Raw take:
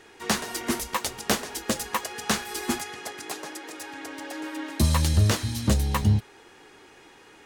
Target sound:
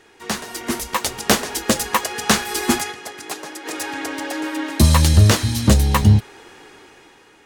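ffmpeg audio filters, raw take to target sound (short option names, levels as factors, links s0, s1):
-filter_complex "[0:a]asplit=3[s0][s1][s2];[s0]afade=t=out:st=2.91:d=0.02[s3];[s1]agate=range=0.447:threshold=0.0282:ratio=16:detection=peak,afade=t=in:st=2.91:d=0.02,afade=t=out:st=3.65:d=0.02[s4];[s2]afade=t=in:st=3.65:d=0.02[s5];[s3][s4][s5]amix=inputs=3:normalize=0,dynaudnorm=f=260:g=7:m=5.01"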